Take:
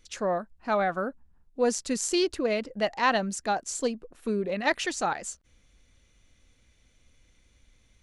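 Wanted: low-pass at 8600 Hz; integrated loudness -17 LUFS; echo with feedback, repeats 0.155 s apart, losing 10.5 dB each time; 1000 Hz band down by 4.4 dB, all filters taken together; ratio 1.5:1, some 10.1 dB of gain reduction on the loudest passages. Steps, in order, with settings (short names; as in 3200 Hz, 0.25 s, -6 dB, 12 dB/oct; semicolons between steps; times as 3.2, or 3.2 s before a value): LPF 8600 Hz; bell 1000 Hz -6 dB; compressor 1.5:1, threshold -50 dBFS; feedback echo 0.155 s, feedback 30%, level -10.5 dB; gain +21.5 dB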